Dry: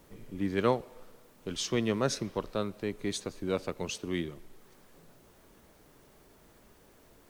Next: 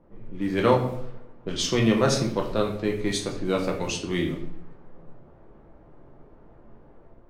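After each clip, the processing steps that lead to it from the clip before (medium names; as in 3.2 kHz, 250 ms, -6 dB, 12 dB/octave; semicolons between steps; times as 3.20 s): level-controlled noise filter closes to 870 Hz, open at -30.5 dBFS; level rider gain up to 5 dB; simulated room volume 110 m³, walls mixed, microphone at 0.77 m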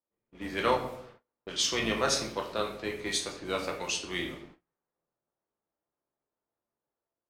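octave divider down 2 oct, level +2 dB; high-pass 1.1 kHz 6 dB/octave; gate -52 dBFS, range -29 dB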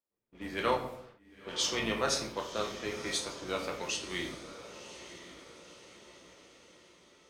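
echo that smears into a reverb 1026 ms, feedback 50%, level -12.5 dB; trim -3 dB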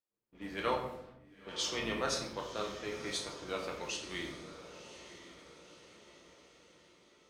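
treble shelf 8.4 kHz -4 dB; simulated room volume 270 m³, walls mixed, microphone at 0.48 m; trim -4 dB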